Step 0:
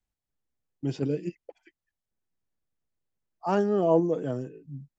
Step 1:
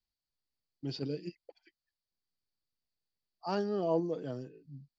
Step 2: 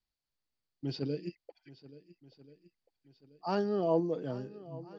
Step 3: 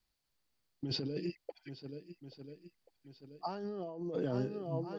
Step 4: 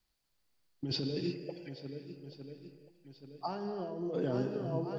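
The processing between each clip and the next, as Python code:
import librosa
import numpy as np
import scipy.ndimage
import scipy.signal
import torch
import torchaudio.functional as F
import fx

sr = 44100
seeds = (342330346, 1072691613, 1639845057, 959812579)

y1 = fx.lowpass_res(x, sr, hz=4600.0, q=8.5)
y1 = F.gain(torch.from_numpy(y1), -8.5).numpy()
y2 = fx.air_absorb(y1, sr, metres=72.0)
y2 = fx.echo_swing(y2, sr, ms=1384, ratio=1.5, feedback_pct=38, wet_db=-18.5)
y2 = F.gain(torch.from_numpy(y2), 2.0).numpy()
y3 = fx.over_compress(y2, sr, threshold_db=-39.0, ratio=-1.0)
y3 = F.gain(torch.from_numpy(y3), 1.5).numpy()
y4 = fx.rev_gated(y3, sr, seeds[0], gate_ms=380, shape='flat', drr_db=6.0)
y4 = F.gain(torch.from_numpy(y4), 1.5).numpy()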